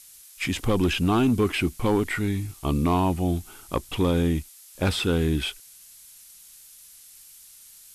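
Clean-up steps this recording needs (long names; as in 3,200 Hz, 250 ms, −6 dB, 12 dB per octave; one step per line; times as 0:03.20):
clipped peaks rebuilt −15 dBFS
noise reduction from a noise print 21 dB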